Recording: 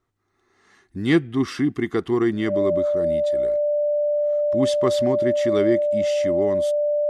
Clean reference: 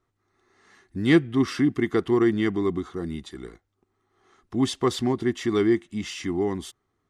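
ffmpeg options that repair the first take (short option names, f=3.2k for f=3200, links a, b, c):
-af "bandreject=f=590:w=30"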